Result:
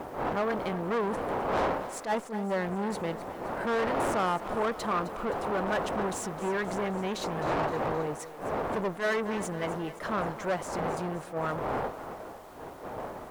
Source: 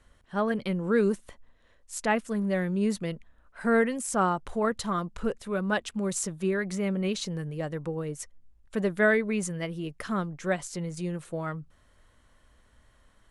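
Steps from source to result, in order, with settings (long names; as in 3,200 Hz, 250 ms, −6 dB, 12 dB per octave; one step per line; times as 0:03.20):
wind on the microphone 630 Hz −33 dBFS
in parallel at −7 dB: bit-depth reduction 8 bits, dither triangular
on the sum: tube saturation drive 28 dB, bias 0.45
parametric band 850 Hz +12 dB 2.7 octaves
on a send: feedback echo with a high-pass in the loop 261 ms, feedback 61%, high-pass 230 Hz, level −14 dB
on the sum: level that may rise only so fast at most 210 dB per second
level −6 dB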